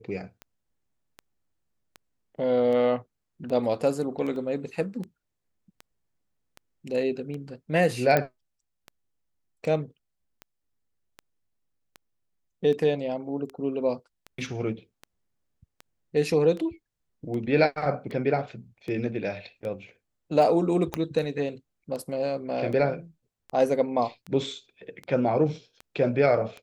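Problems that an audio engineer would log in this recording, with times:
scratch tick 78 rpm −25 dBFS
0:04.36: drop-out 2.1 ms
0:08.17: click −10 dBFS
0:20.94: click −13 dBFS

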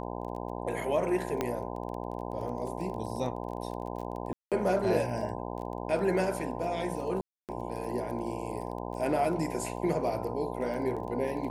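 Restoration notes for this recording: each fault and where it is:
mains buzz 60 Hz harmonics 17 −37 dBFS
surface crackle 18 per second −38 dBFS
0:01.41: click −15 dBFS
0:04.33–0:04.52: drop-out 187 ms
0:07.21–0:07.49: drop-out 278 ms

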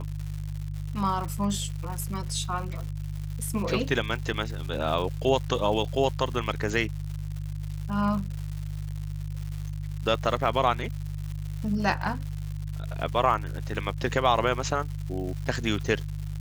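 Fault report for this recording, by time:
surface crackle 220 per second −35 dBFS
mains hum 50 Hz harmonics 3 −33 dBFS

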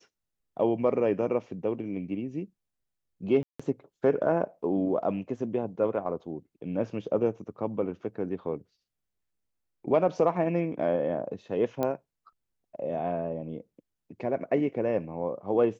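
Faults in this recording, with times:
0:03.43–0:03.60: drop-out 165 ms
0:11.83: click −16 dBFS

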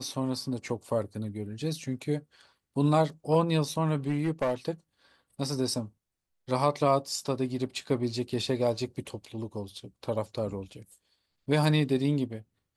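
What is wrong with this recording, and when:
0:04.08–0:04.54: clipping −22.5 dBFS

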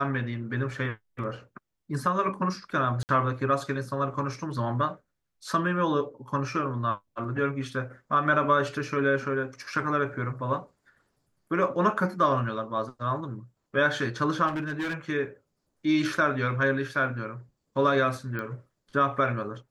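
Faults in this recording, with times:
0:03.03–0:03.09: drop-out 59 ms
0:14.47–0:14.94: clipping −27 dBFS
0:18.39: click −21 dBFS

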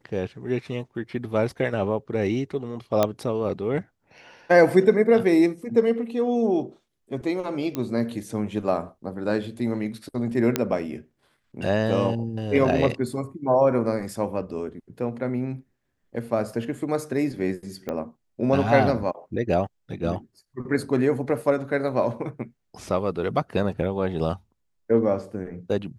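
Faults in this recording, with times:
0:03.03: click −7 dBFS
0:07.75: click −14 dBFS
0:10.56: click −6 dBFS
0:17.89: click −17 dBFS

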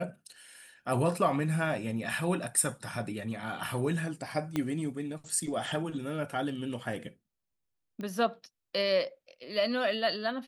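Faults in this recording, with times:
0:04.56: click −17 dBFS
0:08.01: click −28 dBFS

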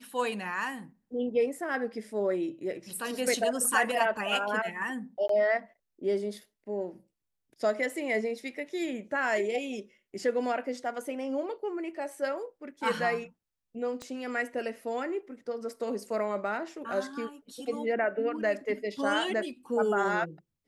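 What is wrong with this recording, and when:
0:05.28–0:05.29: drop-out 13 ms
0:14.02: click −25 dBFS

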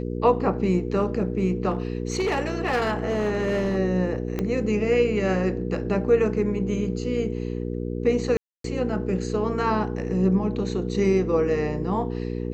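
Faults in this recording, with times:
mains hum 60 Hz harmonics 8 −29 dBFS
0:01.70–0:03.78: clipping −19.5 dBFS
0:04.39: click −14 dBFS
0:08.37–0:08.64: drop-out 273 ms

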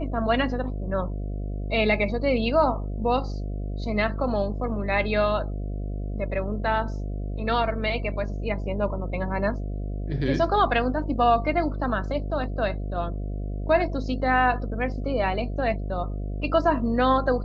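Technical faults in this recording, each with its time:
mains buzz 50 Hz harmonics 14 −30 dBFS

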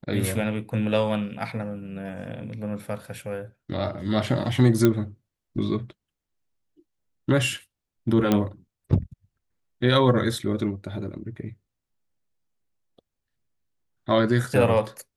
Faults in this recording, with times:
0:04.85: click −7 dBFS
0:08.32: click −8 dBFS

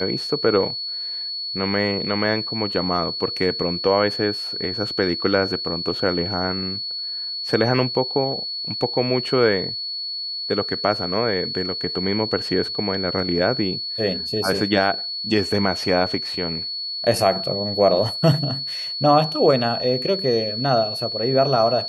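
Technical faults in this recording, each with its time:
whistle 4,400 Hz −26 dBFS

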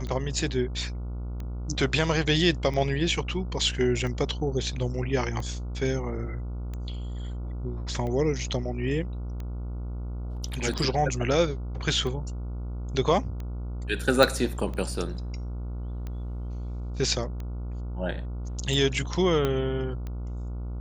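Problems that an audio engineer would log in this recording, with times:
mains buzz 60 Hz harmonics 24 −33 dBFS
scratch tick 45 rpm −24 dBFS
0:10.78: drop-out 4.8 ms
0:14.23: click
0:19.45: click −13 dBFS

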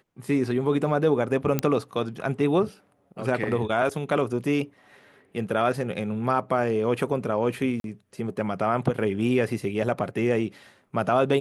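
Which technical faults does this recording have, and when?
0:01.59: click −9 dBFS
0:07.80–0:07.84: drop-out 42 ms

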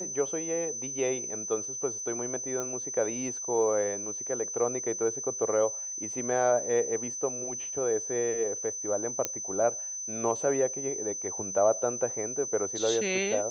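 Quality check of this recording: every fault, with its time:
whistle 6,100 Hz −34 dBFS
0:02.60: click −20 dBFS
0:09.25: click −11 dBFS

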